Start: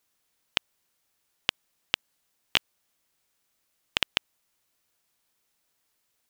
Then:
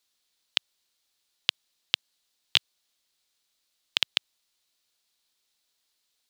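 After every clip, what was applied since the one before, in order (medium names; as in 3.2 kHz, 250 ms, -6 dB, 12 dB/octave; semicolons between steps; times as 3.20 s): graphic EQ 125/4000/8000 Hz -6/+12/+3 dB; trim -6 dB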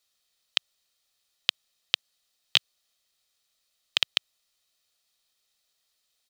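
comb 1.6 ms, depth 39%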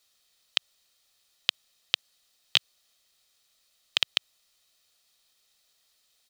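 loudness maximiser +7 dB; trim -1 dB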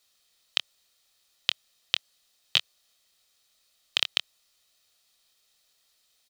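doubling 25 ms -10.5 dB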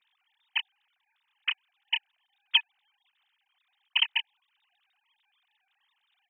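formants replaced by sine waves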